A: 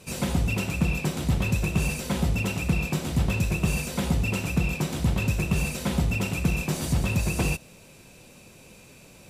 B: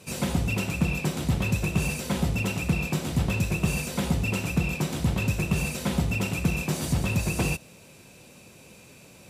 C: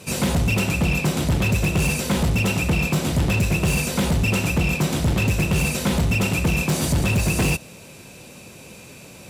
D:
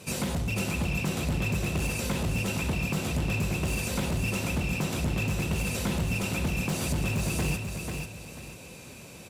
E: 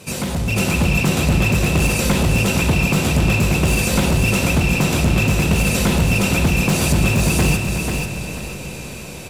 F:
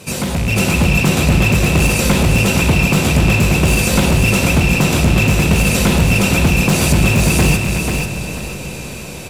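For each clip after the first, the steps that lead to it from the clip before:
high-pass filter 65 Hz
gain into a clipping stage and back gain 23.5 dB; level +8 dB
downward compressor, threshold −22 dBFS, peak gain reduction 5.5 dB; repeating echo 491 ms, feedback 31%, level −5.5 dB; level −5 dB
automatic gain control gain up to 6 dB; on a send at −9 dB: convolution reverb RT60 5.3 s, pre-delay 55 ms; on the sum: level +6 dB
loose part that buzzes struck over −19 dBFS, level −19 dBFS; level +3.5 dB

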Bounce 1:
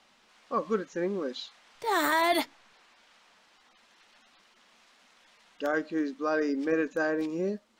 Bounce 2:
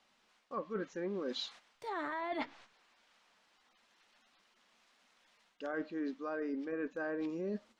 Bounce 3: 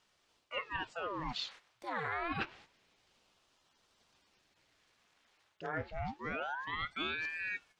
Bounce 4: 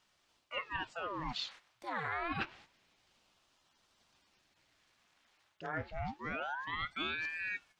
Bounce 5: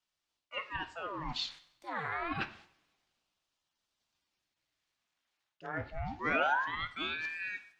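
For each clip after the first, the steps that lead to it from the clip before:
noise gate −54 dBFS, range −10 dB; treble cut that deepens with the level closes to 2,100 Hz, closed at −23 dBFS; reversed playback; downward compressor 12 to 1, threshold −36 dBFS, peak gain reduction 15 dB; reversed playback; level +1 dB
dynamic equaliser 2,000 Hz, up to +7 dB, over −54 dBFS, Q 0.83; ring modulator whose carrier an LFO sweeps 1,100 Hz, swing 90%, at 0.27 Hz; level +1 dB
parametric band 450 Hz −5 dB 0.4 octaves
gain on a spectral selection 0:06.11–0:06.67, 240–7,200 Hz +7 dB; coupled-rooms reverb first 0.65 s, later 2.6 s, from −25 dB, DRR 11 dB; multiband upward and downward expander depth 40%

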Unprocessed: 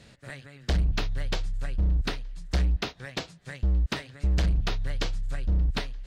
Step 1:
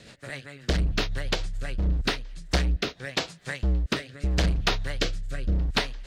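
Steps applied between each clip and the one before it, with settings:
low-shelf EQ 190 Hz −9.5 dB
rotating-speaker cabinet horn 7.5 Hz, later 0.8 Hz, at 0:01.89
level +9 dB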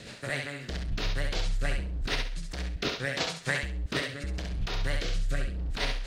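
compressor whose output falls as the input rises −30 dBFS, ratio −1
feedback echo with a high-pass in the loop 67 ms, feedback 28%, high-pass 420 Hz, level −4 dB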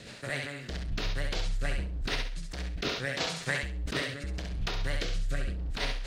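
level that may fall only so fast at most 57 dB per second
level −2 dB

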